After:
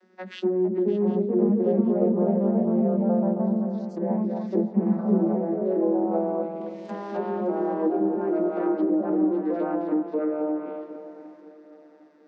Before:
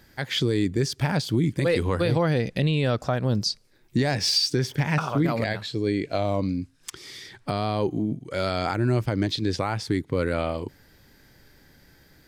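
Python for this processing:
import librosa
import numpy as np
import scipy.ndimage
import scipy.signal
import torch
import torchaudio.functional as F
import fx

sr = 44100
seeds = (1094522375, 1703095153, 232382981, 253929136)

p1 = fx.vocoder_glide(x, sr, note=54, semitones=-4)
p2 = p1 + fx.echo_feedback(p1, sr, ms=269, feedback_pct=18, wet_db=-7.0, dry=0)
p3 = fx.hpss(p2, sr, part='percussive', gain_db=-4)
p4 = np.clip(10.0 ** (22.5 / 20.0) * p3, -1.0, 1.0) / 10.0 ** (22.5 / 20.0)
p5 = p3 + (p4 * librosa.db_to_amplitude(-3.0))
p6 = fx.echo_pitch(p5, sr, ms=473, semitones=2, count=2, db_per_echo=-3.0)
p7 = fx.env_lowpass_down(p6, sr, base_hz=660.0, full_db=-17.0)
p8 = scipy.signal.sosfilt(scipy.signal.butter(16, 200.0, 'highpass', fs=sr, output='sos'), p7)
p9 = fx.high_shelf(p8, sr, hz=2100.0, db=-10.5)
y = fx.echo_swing(p9, sr, ms=755, ratio=3, feedback_pct=32, wet_db=-15)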